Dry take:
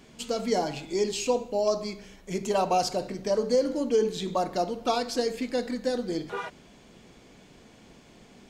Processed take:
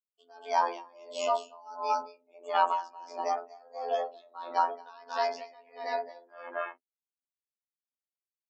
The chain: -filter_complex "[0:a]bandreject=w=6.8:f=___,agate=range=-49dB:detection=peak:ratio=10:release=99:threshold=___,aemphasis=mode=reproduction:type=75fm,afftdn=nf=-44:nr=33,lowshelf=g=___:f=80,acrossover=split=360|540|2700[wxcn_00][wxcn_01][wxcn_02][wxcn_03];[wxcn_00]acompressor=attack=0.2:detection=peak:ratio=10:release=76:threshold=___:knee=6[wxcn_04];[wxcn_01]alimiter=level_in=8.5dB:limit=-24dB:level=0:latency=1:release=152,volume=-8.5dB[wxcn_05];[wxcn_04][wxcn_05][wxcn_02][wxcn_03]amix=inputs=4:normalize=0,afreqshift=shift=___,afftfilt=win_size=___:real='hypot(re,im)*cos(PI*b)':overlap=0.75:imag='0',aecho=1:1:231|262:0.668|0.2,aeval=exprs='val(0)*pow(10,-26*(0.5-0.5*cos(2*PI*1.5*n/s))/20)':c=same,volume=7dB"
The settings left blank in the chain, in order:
530, -46dB, 5, -40dB, 210, 2048